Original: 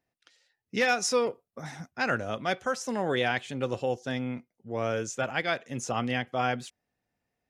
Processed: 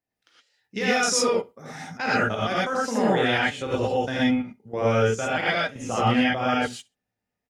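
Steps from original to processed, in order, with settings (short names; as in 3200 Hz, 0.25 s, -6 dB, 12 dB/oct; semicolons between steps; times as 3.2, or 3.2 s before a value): level quantiser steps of 16 dB; feedback echo 65 ms, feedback 16%, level -24 dB; non-linear reverb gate 0.14 s rising, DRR -7 dB; gain +3.5 dB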